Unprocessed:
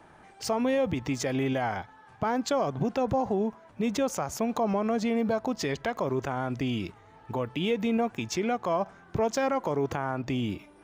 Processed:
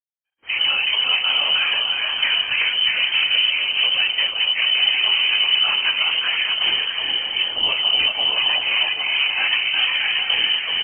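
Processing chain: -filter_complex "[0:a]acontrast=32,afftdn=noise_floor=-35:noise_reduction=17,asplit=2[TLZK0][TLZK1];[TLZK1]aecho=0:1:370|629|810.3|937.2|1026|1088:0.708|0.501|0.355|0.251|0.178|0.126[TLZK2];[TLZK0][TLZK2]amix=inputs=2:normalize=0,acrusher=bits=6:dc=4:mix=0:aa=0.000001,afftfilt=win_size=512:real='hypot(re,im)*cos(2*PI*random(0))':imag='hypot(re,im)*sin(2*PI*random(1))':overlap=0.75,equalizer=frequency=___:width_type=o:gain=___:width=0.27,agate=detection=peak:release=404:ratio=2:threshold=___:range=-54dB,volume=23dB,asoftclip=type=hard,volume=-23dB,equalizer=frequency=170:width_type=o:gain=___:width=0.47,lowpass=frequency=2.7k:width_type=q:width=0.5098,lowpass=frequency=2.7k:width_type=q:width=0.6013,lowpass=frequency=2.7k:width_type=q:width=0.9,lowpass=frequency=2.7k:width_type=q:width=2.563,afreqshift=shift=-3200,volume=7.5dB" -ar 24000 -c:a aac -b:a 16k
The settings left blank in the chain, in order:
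440, -12, -29dB, 8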